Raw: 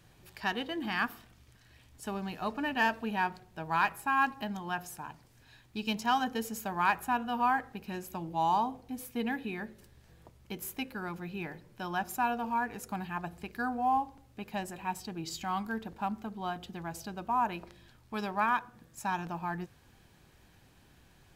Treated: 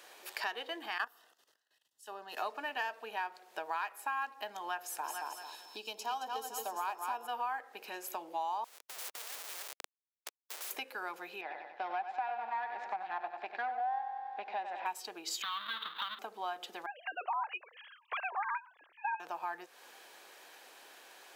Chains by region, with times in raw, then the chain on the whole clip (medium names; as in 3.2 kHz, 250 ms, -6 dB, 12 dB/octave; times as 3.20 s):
0.98–2.37 s: Butterworth band-stop 2.3 kHz, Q 4.5 + level held to a coarse grid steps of 15 dB + three bands expanded up and down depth 100%
5.03–7.26 s: peaking EQ 1.9 kHz -11.5 dB 0.76 oct + whistle 5.3 kHz -64 dBFS + feedback delay 221 ms, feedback 32%, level -6.5 dB
8.64–10.71 s: Schmitt trigger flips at -46.5 dBFS + spectrum-flattening compressor 4:1
11.41–14.86 s: partial rectifier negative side -12 dB + cabinet simulation 150–3500 Hz, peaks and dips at 270 Hz -4 dB, 450 Hz -9 dB, 760 Hz +9 dB, 1.2 kHz -7 dB, 3 kHz -8 dB + feedback delay 94 ms, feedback 50%, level -9.5 dB
15.42–16.19 s: square wave that keeps the level + FFT filter 180 Hz 0 dB, 410 Hz -16 dB, 720 Hz -19 dB, 1.2 kHz +9 dB, 2.4 kHz -5 dB, 3.7 kHz +14 dB, 5.3 kHz -24 dB, 7.7 kHz -29 dB, 13 kHz -13 dB + compression 3:1, threshold -36 dBFS
16.86–19.20 s: formants replaced by sine waves + tilt EQ +4 dB/octave + tremolo saw up 7 Hz, depth 50%
whole clip: compression 8:1, threshold -44 dBFS; high-pass 450 Hz 24 dB/octave; trim +10 dB